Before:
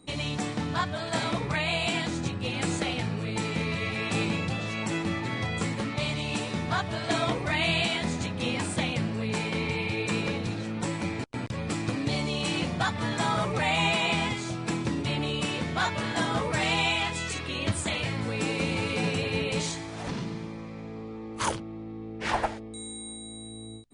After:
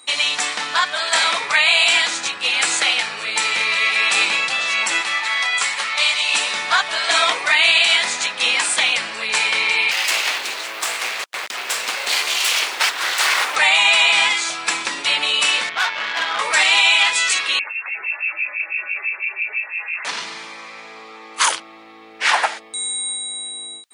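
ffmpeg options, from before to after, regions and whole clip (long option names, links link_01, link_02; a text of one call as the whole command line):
ffmpeg -i in.wav -filter_complex "[0:a]asettb=1/sr,asplit=3[link_01][link_02][link_03];[link_01]atrim=end=5.014[link_04];[link_02]atrim=start=5.01:end=6.34,asetpts=PTS-STARTPTS,afade=type=in:duration=0.004:curve=qsin,afade=type=out:start_time=1.326:duration=0.004:curve=qsin,highpass=frequency=160:width=0.5412,highpass=frequency=160:width=1.3066,equalizer=frequency=280:width_type=o:width=1:gain=-12,bandreject=frequency=500:width=8.3[link_05];[link_03]atrim=start=6.336[link_06];[link_04][link_05]acrossfade=duration=0.004:curve1=hsin:curve2=qsin[link_07];[link_07][link_06]acrossfade=duration=0.004:curve1=qsin:curve2=hsin,asettb=1/sr,asplit=3[link_08][link_09][link_10];[link_08]atrim=end=9.914[link_11];[link_09]atrim=start=9.91:end=13.56,asetpts=PTS-STARTPTS,afade=type=in:duration=0.004:curve=qsin,afade=type=out:start_time=3.646:duration=0.004:curve=qsin,aeval=exprs='abs(val(0))':channel_layout=same,acrusher=bits=8:mode=log:mix=0:aa=0.000001[link_12];[link_10]atrim=start=13.556[link_13];[link_11][link_12]acrossfade=duration=0.004:curve1=hsin:curve2=qsin[link_14];[link_14][link_13]acrossfade=duration=0.004:curve1=qsin:curve2=hsin,asettb=1/sr,asplit=3[link_15][link_16][link_17];[link_15]atrim=end=15.694[link_18];[link_16]atrim=start=15.69:end=16.39,asetpts=PTS-STARTPTS,afade=type=in:duration=0.004:curve=qsin,afade=type=out:start_time=0.696:duration=0.004:curve=qsin,lowpass=frequency=3700:width=0.5412,lowpass=frequency=3700:width=1.3066,aeval=exprs='(tanh(22.4*val(0)+0.8)-tanh(0.8))/22.4':channel_layout=same,equalizer=frequency=97:width=2:gain=4[link_19];[link_17]atrim=start=16.386[link_20];[link_18][link_19]acrossfade=duration=0.004:curve1=hsin:curve2=qsin[link_21];[link_21][link_20]acrossfade=duration=0.004:curve1=qsin:curve2=hsin,asettb=1/sr,asplit=3[link_22][link_23][link_24];[link_22]atrim=end=17.594[link_25];[link_23]atrim=start=17.59:end=20.05,asetpts=PTS-STARTPTS,afade=type=in:duration=0.004:curve=qsin,afade=type=out:start_time=2.456:duration=0.004:curve=qsin,acompressor=threshold=-32dB:ratio=6:attack=3.2:release=140:knee=1:detection=peak,acrossover=split=820[link_26][link_27];[link_26]aeval=exprs='val(0)*(1-1/2+1/2*cos(2*PI*6*n/s))':channel_layout=same[link_28];[link_27]aeval=exprs='val(0)*(1-1/2-1/2*cos(2*PI*6*n/s))':channel_layout=same[link_29];[link_28][link_29]amix=inputs=2:normalize=0,lowpass=frequency=2400:width_type=q:width=0.5098,lowpass=frequency=2400:width_type=q:width=0.6013,lowpass=frequency=2400:width_type=q:width=0.9,lowpass=frequency=2400:width_type=q:width=2.563,afreqshift=-2800[link_30];[link_24]atrim=start=20.046[link_31];[link_25][link_30]acrossfade=duration=0.004:curve1=hsin:curve2=qsin[link_32];[link_32][link_31]acrossfade=duration=0.004:curve1=qsin:curve2=hsin,highpass=1300,alimiter=level_in=20.5dB:limit=-1dB:release=50:level=0:latency=1,volume=-3.5dB" out.wav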